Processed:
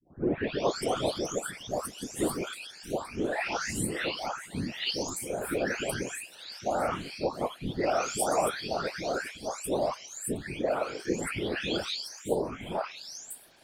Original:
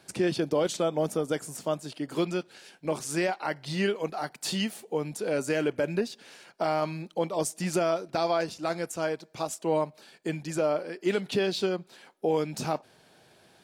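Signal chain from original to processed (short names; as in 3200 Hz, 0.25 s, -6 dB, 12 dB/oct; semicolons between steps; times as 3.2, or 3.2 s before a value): spectral delay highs late, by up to 0.739 s; tilt shelf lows -3.5 dB, about 650 Hz; whisperiser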